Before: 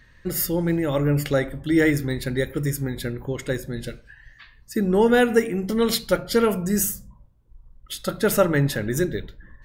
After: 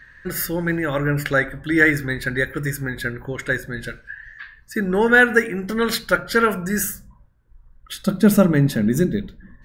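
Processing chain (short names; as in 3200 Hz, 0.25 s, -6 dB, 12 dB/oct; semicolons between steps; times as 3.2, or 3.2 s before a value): bell 1600 Hz +15 dB 0.7 oct, from 8.03 s 210 Hz; gain -1 dB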